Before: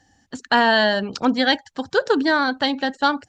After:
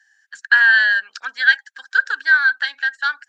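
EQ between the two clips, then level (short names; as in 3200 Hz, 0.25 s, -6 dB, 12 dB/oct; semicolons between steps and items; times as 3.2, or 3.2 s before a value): resonant high-pass 1600 Hz, resonance Q 15; high shelf 2600 Hz +8.5 dB; -11.0 dB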